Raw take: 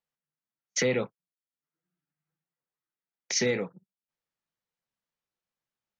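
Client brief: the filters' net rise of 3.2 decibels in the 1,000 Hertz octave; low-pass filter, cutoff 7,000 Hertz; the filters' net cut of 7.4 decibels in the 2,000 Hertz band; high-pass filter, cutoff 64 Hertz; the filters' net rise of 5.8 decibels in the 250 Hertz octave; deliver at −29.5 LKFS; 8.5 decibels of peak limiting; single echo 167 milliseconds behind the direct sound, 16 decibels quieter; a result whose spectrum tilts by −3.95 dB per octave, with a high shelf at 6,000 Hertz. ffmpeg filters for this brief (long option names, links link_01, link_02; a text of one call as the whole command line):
ffmpeg -i in.wav -af "highpass=64,lowpass=7000,equalizer=frequency=250:width_type=o:gain=6.5,equalizer=frequency=1000:width_type=o:gain=6.5,equalizer=frequency=2000:width_type=o:gain=-8.5,highshelf=frequency=6000:gain=-8,alimiter=limit=-22.5dB:level=0:latency=1,aecho=1:1:167:0.158,volume=4dB" out.wav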